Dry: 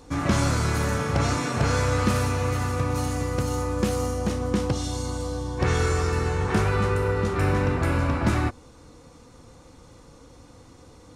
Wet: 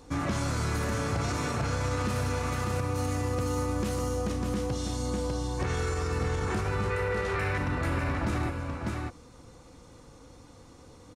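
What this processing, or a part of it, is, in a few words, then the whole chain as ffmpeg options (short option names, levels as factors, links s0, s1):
stacked limiters: -filter_complex "[0:a]asettb=1/sr,asplit=3[s0][s1][s2];[s0]atrim=end=6.904[s3];[s1]atrim=start=6.9:end=7.58,asetpts=PTS-STARTPTS,afade=t=in:d=0.004:c=qsin,afade=t=out:st=0.676:d=0.004:c=qsin,equalizer=f=250:t=o:w=1:g=-11,equalizer=f=500:t=o:w=1:g=6,equalizer=f=2000:t=o:w=1:g=10,equalizer=f=4000:t=o:w=1:g=3[s4];[s2]atrim=start=7.576[s5];[s3][s4]acrossfade=d=0.004:c1=hsin:c2=qsin[s6];[s6][s5]acrossfade=d=0.004:c1=qsin:c2=hsin,aecho=1:1:599:0.422,alimiter=limit=0.2:level=0:latency=1:release=485,alimiter=limit=0.126:level=0:latency=1:release=29,volume=0.708"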